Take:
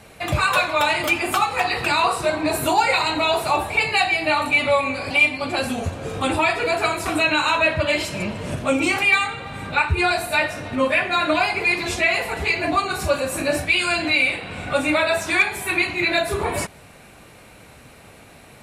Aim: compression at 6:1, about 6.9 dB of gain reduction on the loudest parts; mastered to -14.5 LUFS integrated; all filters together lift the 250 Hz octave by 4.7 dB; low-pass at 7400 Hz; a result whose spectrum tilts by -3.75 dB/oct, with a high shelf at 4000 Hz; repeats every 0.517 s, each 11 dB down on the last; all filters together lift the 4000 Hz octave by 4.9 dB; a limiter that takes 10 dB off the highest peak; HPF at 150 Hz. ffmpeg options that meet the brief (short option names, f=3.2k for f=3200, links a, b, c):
-af "highpass=150,lowpass=7.4k,equalizer=f=250:t=o:g=6.5,highshelf=f=4k:g=-3,equalizer=f=4k:t=o:g=7.5,acompressor=threshold=-19dB:ratio=6,alimiter=limit=-18.5dB:level=0:latency=1,aecho=1:1:517|1034|1551:0.282|0.0789|0.0221,volume=11.5dB"